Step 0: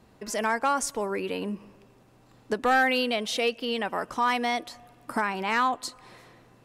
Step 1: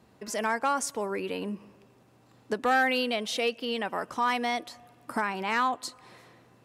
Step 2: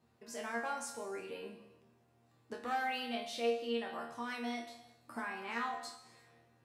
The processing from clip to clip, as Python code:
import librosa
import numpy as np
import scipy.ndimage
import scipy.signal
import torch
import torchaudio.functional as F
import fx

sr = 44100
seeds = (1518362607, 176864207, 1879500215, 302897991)

y1 = scipy.signal.sosfilt(scipy.signal.butter(2, 72.0, 'highpass', fs=sr, output='sos'), x)
y1 = F.gain(torch.from_numpy(y1), -2.0).numpy()
y2 = fx.resonator_bank(y1, sr, root=39, chord='fifth', decay_s=0.31)
y2 = fx.rev_gated(y2, sr, seeds[0], gate_ms=390, shape='falling', drr_db=7.0)
y2 = F.gain(torch.from_numpy(y2), -1.5).numpy()